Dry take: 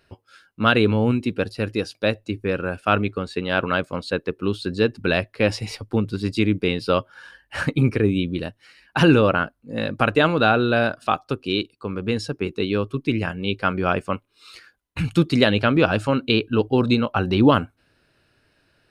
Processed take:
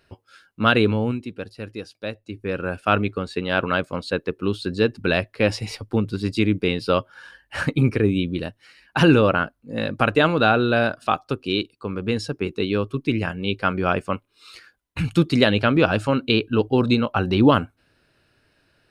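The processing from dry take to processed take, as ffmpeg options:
-filter_complex "[0:a]asplit=3[s0][s1][s2];[s0]atrim=end=1.27,asetpts=PTS-STARTPTS,afade=t=out:st=0.81:d=0.46:silence=0.354813[s3];[s1]atrim=start=1.27:end=2.25,asetpts=PTS-STARTPTS,volume=0.355[s4];[s2]atrim=start=2.25,asetpts=PTS-STARTPTS,afade=t=in:d=0.46:silence=0.354813[s5];[s3][s4][s5]concat=n=3:v=0:a=1"

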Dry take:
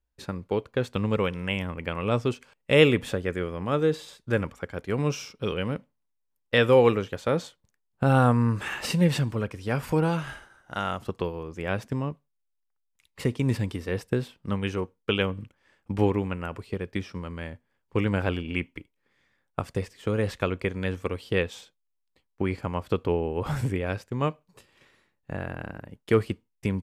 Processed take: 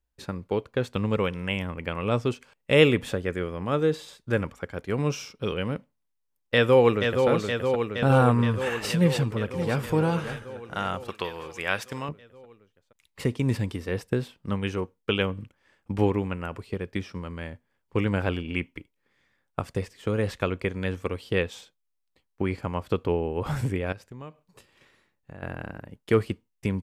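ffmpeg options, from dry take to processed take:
-filter_complex "[0:a]asplit=2[s0][s1];[s1]afade=t=in:st=6.54:d=0.01,afade=t=out:st=7.28:d=0.01,aecho=0:1:470|940|1410|1880|2350|2820|3290|3760|4230|4700|5170|5640:0.562341|0.421756|0.316317|0.237238|0.177928|0.133446|0.100085|0.0750635|0.0562976|0.0422232|0.0316674|0.0237506[s2];[s0][s2]amix=inputs=2:normalize=0,asplit=2[s3][s4];[s4]afade=t=in:st=8.98:d=0.01,afade=t=out:st=9.81:d=0.01,aecho=0:1:570|1140|1710|2280:0.316228|0.11068|0.0387379|0.0135583[s5];[s3][s5]amix=inputs=2:normalize=0,asettb=1/sr,asplit=3[s6][s7][s8];[s6]atrim=end=11.084[s9];[s7]atrim=start=11.08:end=12.09,asetpts=PTS-STARTPTS,afade=t=in:d=0.004:c=qsin,afade=t=out:st=1.006:d=0.004:c=qsin,tiltshelf=f=690:g=-9.5[s10];[s8]atrim=start=12.086[s11];[s9][s10]acrossfade=d=0.004:c1=hsin:c2=qsin[s12];[s12][s11]acrossfade=d=0.004:c1=qsin:c2=hsin,asettb=1/sr,asplit=3[s13][s14][s15];[s13]atrim=end=23.924[s16];[s14]atrim=start=23.92:end=25.43,asetpts=PTS-STARTPTS,afade=t=in:d=0.004:c=qsin,afade=t=out:st=1.506:d=0.004:c=qsin,acompressor=threshold=0.00794:ratio=3:attack=3.2:release=140:knee=1:detection=peak[s17];[s15]atrim=start=25.426[s18];[s16][s17]acrossfade=d=0.004:c1=hsin:c2=qsin[s19];[s19][s18]acrossfade=d=0.004:c1=qsin:c2=hsin"

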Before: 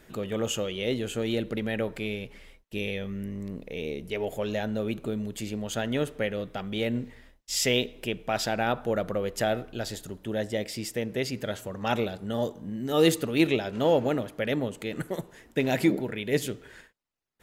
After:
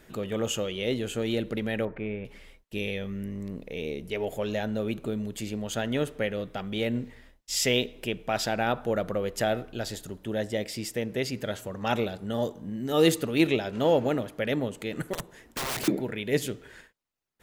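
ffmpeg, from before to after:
-filter_complex "[0:a]asettb=1/sr,asplit=3[s0][s1][s2];[s0]atrim=end=1.854[s3];[s1]atrim=start=1.85:end=2.25,asetpts=PTS-STARTPTS,afade=t=in:d=0.004:c=qsin,afade=t=out:st=0.396:d=0.004:c=qsin,lowpass=f=2100:w=0.5412,lowpass=f=2100:w=1.3066[s4];[s2]atrim=start=2.246[s5];[s3][s4]acrossfade=d=0.004:c1=hsin:c2=qsin[s6];[s6][s5]acrossfade=d=0.004:c1=qsin:c2=hsin,asettb=1/sr,asplit=3[s7][s8][s9];[s7]atrim=end=15.134[s10];[s8]atrim=start=15.13:end=15.88,asetpts=PTS-STARTPTS,afade=t=in:d=0.004:c=qsin,afade=t=out:st=0.746:d=0.004:c=qsin,aeval=exprs='(mod(21.1*val(0)+1,2)-1)/21.1':c=same[s11];[s9]atrim=start=15.876[s12];[s10][s11]acrossfade=d=0.004:c1=hsin:c2=qsin[s13];[s13][s12]acrossfade=d=0.004:c1=qsin:c2=hsin"

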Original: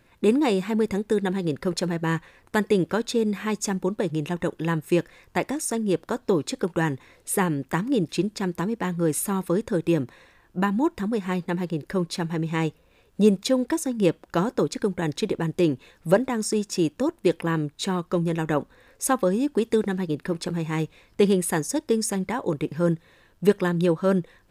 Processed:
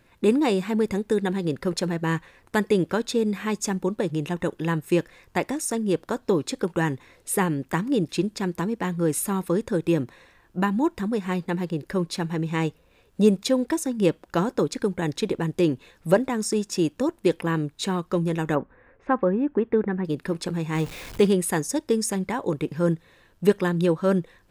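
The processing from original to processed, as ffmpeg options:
-filter_complex "[0:a]asettb=1/sr,asplit=3[s0][s1][s2];[s0]atrim=end=18.554[s3];[s1]atrim=start=18.55:end=20.05,asetpts=PTS-STARTPTS,afade=t=in:d=0.004:c=qsin,afade=t=out:st=1.496:d=0.004:c=qsin,lowpass=f=2100:w=0.5412,lowpass=f=2100:w=1.3066[s4];[s2]atrim=start=20.046[s5];[s3][s4]acrossfade=d=0.004:c1=hsin:c2=qsin[s6];[s6][s5]acrossfade=d=0.004:c1=qsin:c2=hsin,asettb=1/sr,asplit=3[s7][s8][s9];[s7]atrim=end=20.754[s10];[s8]atrim=start=20.75:end=21.27,asetpts=PTS-STARTPTS,afade=t=in:d=0.004:c=qsin,afade=t=out:st=0.516:d=0.004:c=qsin,aeval=exprs='val(0)+0.5*0.02*sgn(val(0))':c=same[s11];[s9]atrim=start=21.266[s12];[s10][s11]acrossfade=d=0.004:c1=hsin:c2=qsin[s13];[s13][s12]acrossfade=d=0.004:c1=qsin:c2=hsin"

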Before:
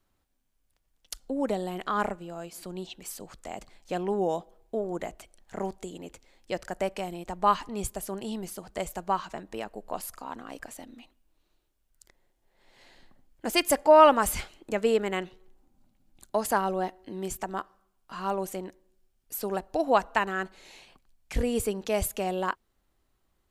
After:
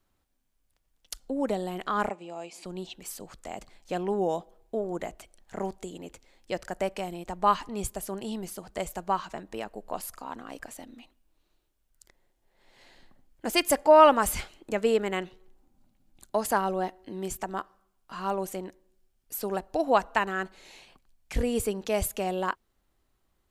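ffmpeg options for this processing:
-filter_complex "[0:a]asettb=1/sr,asplit=3[s0][s1][s2];[s0]atrim=end=2.094[s3];[s1]atrim=start=2.09:end=2.65,asetpts=PTS-STARTPTS,afade=t=in:d=0.004:c=qsin,afade=t=out:st=0.556:d=0.004:c=qsin,highpass=250,equalizer=f=830:t=q:w=4:g=5,equalizer=f=1500:t=q:w=4:g=-10,equalizer=f=2400:t=q:w=4:g=8,lowpass=f=8900:w=0.5412,lowpass=f=8900:w=1.3066[s4];[s2]atrim=start=2.646[s5];[s3][s4]acrossfade=d=0.004:c1=hsin:c2=qsin[s6];[s6][s5]acrossfade=d=0.004:c1=qsin:c2=hsin"

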